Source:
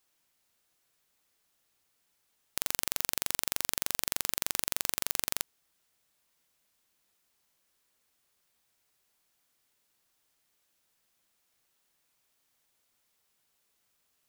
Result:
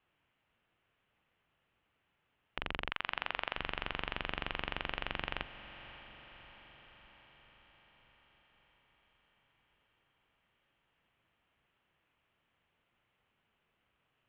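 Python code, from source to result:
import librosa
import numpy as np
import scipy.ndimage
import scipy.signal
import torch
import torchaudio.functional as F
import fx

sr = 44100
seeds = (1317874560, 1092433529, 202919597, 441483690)

y = fx.octave_divider(x, sr, octaves=1, level_db=3.0)
y = fx.highpass(y, sr, hz=fx.line((2.9, 1100.0), (3.54, 510.0)), slope=24, at=(2.9, 3.54), fade=0.02)
y = fx.cheby_harmonics(y, sr, harmonics=(8,), levels_db=(-26,), full_scale_db=-1.0)
y = scipy.signal.sosfilt(scipy.signal.ellip(4, 1.0, 60, 3000.0, 'lowpass', fs=sr, output='sos'), y)
y = fx.echo_diffused(y, sr, ms=574, feedback_pct=63, wet_db=-14.0)
y = F.gain(torch.from_numpy(y), 3.5).numpy()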